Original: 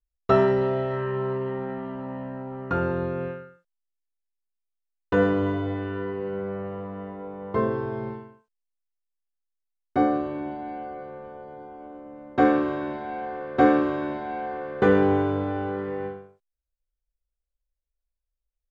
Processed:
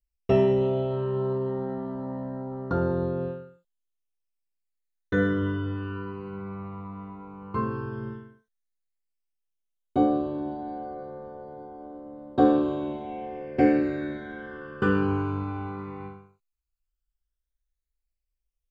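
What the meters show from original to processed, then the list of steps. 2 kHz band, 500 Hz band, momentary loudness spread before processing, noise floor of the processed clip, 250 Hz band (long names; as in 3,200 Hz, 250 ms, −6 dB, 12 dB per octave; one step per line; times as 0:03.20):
−3.5 dB, −3.0 dB, 18 LU, −83 dBFS, −0.5 dB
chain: all-pass phaser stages 12, 0.11 Hz, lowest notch 550–2,500 Hz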